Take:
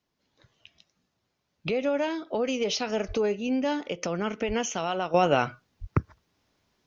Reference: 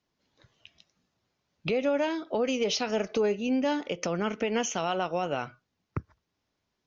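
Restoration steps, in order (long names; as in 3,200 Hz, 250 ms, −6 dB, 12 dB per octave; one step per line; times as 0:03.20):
0:03.07–0:03.19: high-pass filter 140 Hz 24 dB per octave
0:04.47–0:04.59: high-pass filter 140 Hz 24 dB per octave
0:05.14: level correction −8.5 dB
0:05.80–0:05.92: high-pass filter 140 Hz 24 dB per octave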